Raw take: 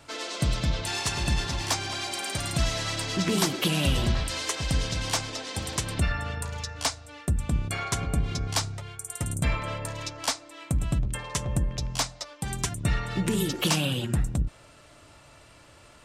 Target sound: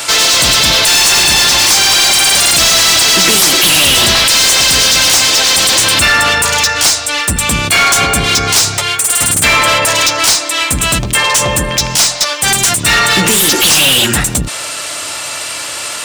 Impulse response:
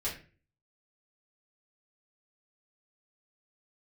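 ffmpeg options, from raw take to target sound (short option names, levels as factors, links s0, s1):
-filter_complex "[0:a]crystalizer=i=4:c=0,asplit=2[s0][s1];[s1]highpass=f=720:p=1,volume=56.2,asoftclip=type=tanh:threshold=0.944[s2];[s0][s2]amix=inputs=2:normalize=0,lowpass=f=7300:p=1,volume=0.501"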